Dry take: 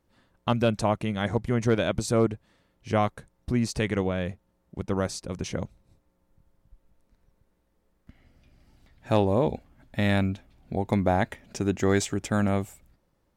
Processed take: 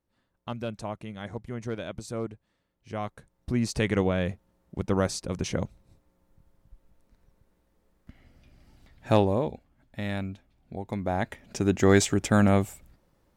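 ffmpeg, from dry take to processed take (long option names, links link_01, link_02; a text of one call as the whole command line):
ffmpeg -i in.wav -af "volume=14dB,afade=type=in:start_time=2.96:duration=1.06:silence=0.237137,afade=type=out:start_time=9.12:duration=0.4:silence=0.316228,afade=type=in:start_time=10.99:duration=0.97:silence=0.251189" out.wav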